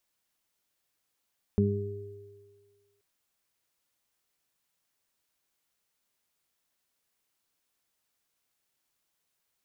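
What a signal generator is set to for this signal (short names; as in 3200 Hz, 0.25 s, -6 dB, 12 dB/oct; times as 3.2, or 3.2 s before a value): additive tone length 1.43 s, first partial 101 Hz, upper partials 3/-17/-2.5 dB, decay 1.43 s, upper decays 0.67/1.35/1.82 s, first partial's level -24 dB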